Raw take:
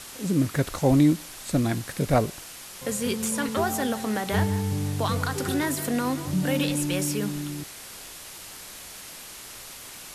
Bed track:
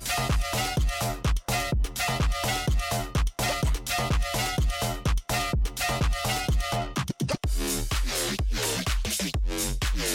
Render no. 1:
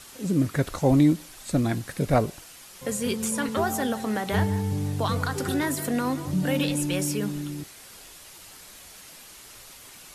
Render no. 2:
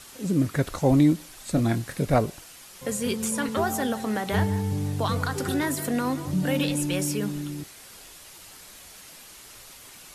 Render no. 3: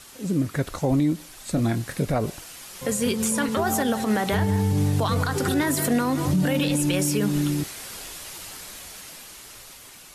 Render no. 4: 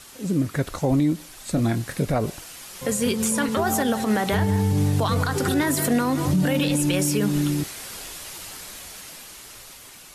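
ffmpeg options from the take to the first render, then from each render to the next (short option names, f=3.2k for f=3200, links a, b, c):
-af "afftdn=nr=6:nf=-42"
-filter_complex "[0:a]asettb=1/sr,asplit=3[a][b][c];[a]atrim=end=1.544[d];[b]atrim=start=1.54:end=2.01,asetpts=PTS-STARTPTS,afade=t=in:d=0.004:c=qsin,afade=t=out:st=0.466:d=0.004:c=qsin,asplit=2[e][f];[f]adelay=26,volume=-9dB[g];[e][g]amix=inputs=2:normalize=0,atrim=end_sample=20727[h];[c]atrim=start=2.006[i];[d][h]acrossfade=d=0.004:c1=hsin:c2=qsin[j];[j][i]acrossfade=d=0.004:c1=qsin:c2=hsin"
-af "dynaudnorm=f=930:g=5:m=11dB,alimiter=limit=-14dB:level=0:latency=1:release=99"
-af "volume=1dB"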